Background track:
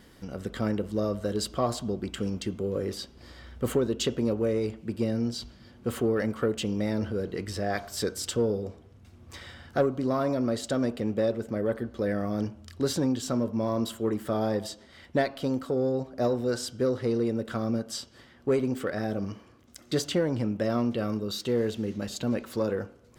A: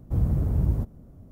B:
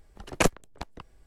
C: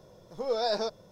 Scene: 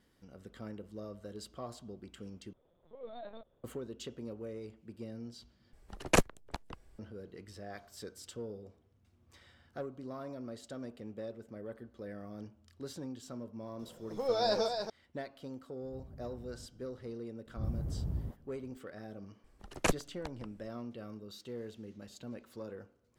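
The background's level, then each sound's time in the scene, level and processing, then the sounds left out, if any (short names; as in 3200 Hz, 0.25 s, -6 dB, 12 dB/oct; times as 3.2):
background track -16.5 dB
2.53 replace with C -17 dB + LPC vocoder at 8 kHz pitch kept
5.73 replace with B -3 dB
13.79 add C -2 dB + echo 0.285 s -6.5 dB
15.82 add A -14.5 dB + compressor 3:1, threshold -38 dBFS
17.46 add A -13 dB + dispersion highs, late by 60 ms, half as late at 470 Hz
19.44 add B -7 dB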